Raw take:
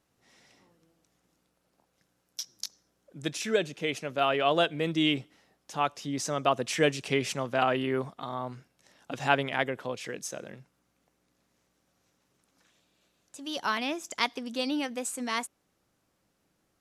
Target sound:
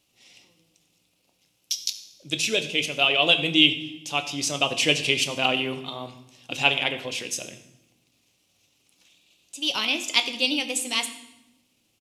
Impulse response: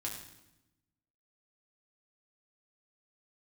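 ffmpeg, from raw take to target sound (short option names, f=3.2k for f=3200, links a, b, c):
-filter_complex "[0:a]atempo=1.4,highshelf=f=2.1k:t=q:w=3:g=8,asplit=2[a][b];[1:a]atrim=start_sample=2205[c];[b][c]afir=irnorm=-1:irlink=0,volume=-1.5dB[d];[a][d]amix=inputs=2:normalize=0,volume=-3.5dB"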